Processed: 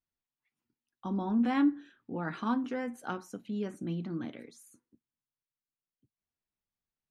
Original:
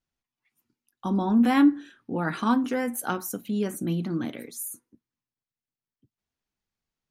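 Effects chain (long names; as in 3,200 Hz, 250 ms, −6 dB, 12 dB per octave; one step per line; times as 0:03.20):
high-frequency loss of the air 96 metres
level −7.5 dB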